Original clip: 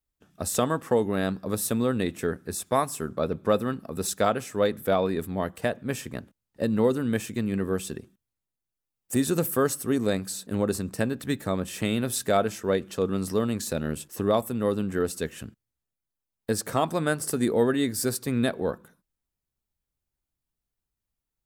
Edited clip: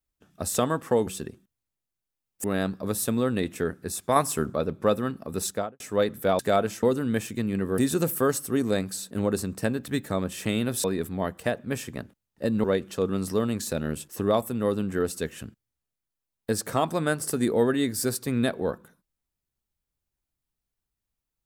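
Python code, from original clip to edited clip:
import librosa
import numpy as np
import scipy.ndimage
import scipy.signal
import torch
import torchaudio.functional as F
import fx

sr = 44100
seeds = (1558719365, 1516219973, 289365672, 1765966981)

y = fx.studio_fade_out(x, sr, start_s=4.07, length_s=0.36)
y = fx.edit(y, sr, fx.clip_gain(start_s=2.79, length_s=0.38, db=5.0),
    fx.swap(start_s=5.02, length_s=1.8, other_s=12.2, other_length_s=0.44),
    fx.move(start_s=7.77, length_s=1.37, to_s=1.07), tone=tone)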